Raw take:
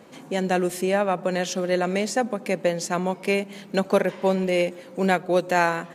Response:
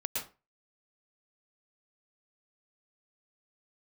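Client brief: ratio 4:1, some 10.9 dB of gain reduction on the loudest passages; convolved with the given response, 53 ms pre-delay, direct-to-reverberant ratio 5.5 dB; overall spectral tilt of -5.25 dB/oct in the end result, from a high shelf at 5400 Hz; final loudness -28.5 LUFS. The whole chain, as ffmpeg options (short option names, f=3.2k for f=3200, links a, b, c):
-filter_complex "[0:a]highshelf=f=5.4k:g=-6.5,acompressor=threshold=-29dB:ratio=4,asplit=2[a][b];[1:a]atrim=start_sample=2205,adelay=53[c];[b][c]afir=irnorm=-1:irlink=0,volume=-9dB[d];[a][d]amix=inputs=2:normalize=0,volume=3.5dB"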